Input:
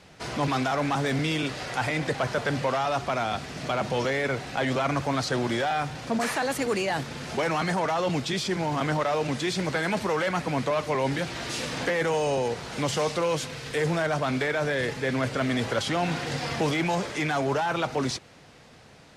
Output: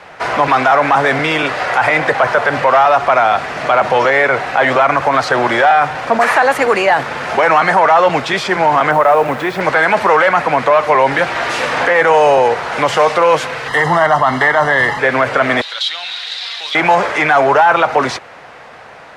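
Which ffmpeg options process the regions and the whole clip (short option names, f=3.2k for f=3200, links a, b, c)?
-filter_complex "[0:a]asettb=1/sr,asplit=3[a][b][c];[a]atrim=end=8.914[d];[b]atrim=start=8.91:end=9.61,asetpts=PTS-STARTPTS,afade=t=in:d=0.004:c=qsin,afade=t=out:st=0.696:d=0.004:c=qsin,lowpass=f=1.3k:p=1,acrusher=bits=8:dc=4:mix=0:aa=0.000001,acompressor=mode=upward:threshold=-29dB:ratio=2.5:attack=3.2:release=140:knee=2.83:detection=peak[e];[c]atrim=start=9.606[f];[d][e]acrossfade=d=0.004:c1=hsin:c2=qsin[g];[g][f]acrossfade=d=0.004:c1=qsin:c2=hsin,asettb=1/sr,asplit=3[h][i][j];[h]atrim=end=13.684[k];[i]atrim=start=13.68:end=14.99,asetpts=PTS-STARTPTS,afade=t=in:d=0.004:c=qsin,afade=t=out:st=1.306:d=0.004:c=qsin,asuperstop=centerf=2400:order=4:qfactor=3.3,aecho=1:1:1:0.6,atrim=end_sample=57771[l];[j]atrim=start=14.986[m];[k][l]acrossfade=d=0.004:c1=hsin:c2=qsin[n];[n][m]acrossfade=d=0.004:c1=qsin:c2=hsin,asettb=1/sr,asplit=3[o][p][q];[o]atrim=end=15.614[r];[p]atrim=start=15.61:end=16.75,asetpts=PTS-STARTPTS,afade=t=in:d=0.004:c=qsin,afade=t=out:st=1.136:d=0.004:c=qsin,bandpass=f=3.8k:t=q:w=8.7,aemphasis=mode=production:type=75kf,acontrast=84[s];[q]atrim=start=16.746[t];[r][s]acrossfade=d=0.004:c1=hsin:c2=qsin[u];[u][t]acrossfade=d=0.004:c1=qsin:c2=hsin,acrossover=split=540 2200:gain=0.126 1 0.141[v][w][x];[v][w][x]amix=inputs=3:normalize=0,alimiter=level_in=22.5dB:limit=-1dB:release=50:level=0:latency=1,volume=-1dB"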